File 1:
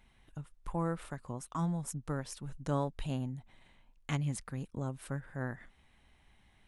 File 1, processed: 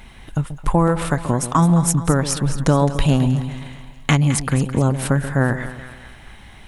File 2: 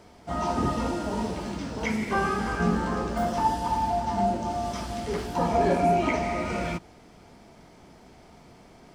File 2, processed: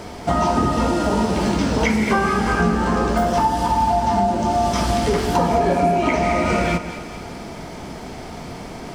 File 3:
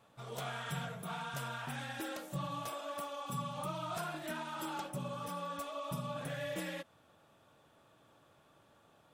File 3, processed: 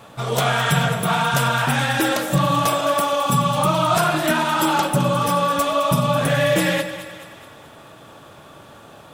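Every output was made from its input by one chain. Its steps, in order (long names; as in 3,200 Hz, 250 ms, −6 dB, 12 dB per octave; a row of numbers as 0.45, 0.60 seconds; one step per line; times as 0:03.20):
downward compressor 6 to 1, threshold −34 dBFS
echo with a time of its own for lows and highs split 850 Hz, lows 134 ms, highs 213 ms, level −11.5 dB
loudness normalisation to −19 LKFS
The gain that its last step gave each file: +22.5, +18.0, +22.0 decibels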